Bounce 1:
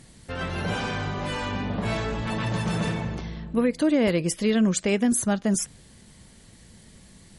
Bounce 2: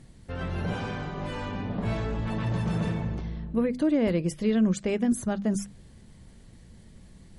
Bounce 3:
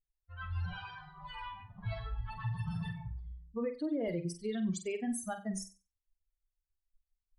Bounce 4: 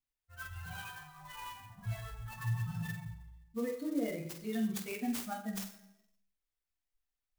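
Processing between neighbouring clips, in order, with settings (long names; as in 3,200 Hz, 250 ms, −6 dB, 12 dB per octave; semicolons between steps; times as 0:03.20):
spectral tilt −2 dB per octave; mains-hum notches 50/100/150/200/250 Hz; reversed playback; upward compression, threshold −40 dBFS; reversed playback; level −5.5 dB
spectral dynamics exaggerated over time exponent 3; brickwall limiter −28 dBFS, peak gain reduction 10.5 dB; on a send: flutter between parallel walls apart 8 metres, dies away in 0.31 s
convolution reverb RT60 1.0 s, pre-delay 3 ms, DRR 0 dB; converter with an unsteady clock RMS 0.037 ms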